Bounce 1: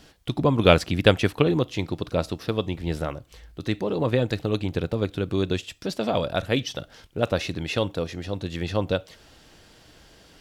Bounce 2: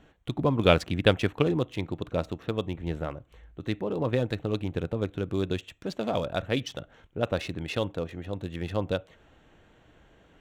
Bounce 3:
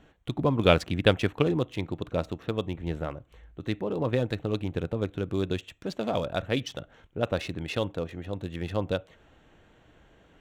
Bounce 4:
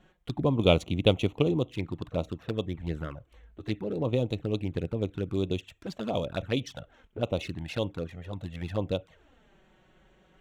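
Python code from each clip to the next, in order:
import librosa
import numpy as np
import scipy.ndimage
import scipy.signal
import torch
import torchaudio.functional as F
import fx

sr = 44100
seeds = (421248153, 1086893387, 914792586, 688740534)

y1 = fx.wiener(x, sr, points=9)
y1 = y1 * librosa.db_to_amplitude(-4.0)
y2 = y1
y3 = fx.env_flanger(y2, sr, rest_ms=5.9, full_db=-24.5)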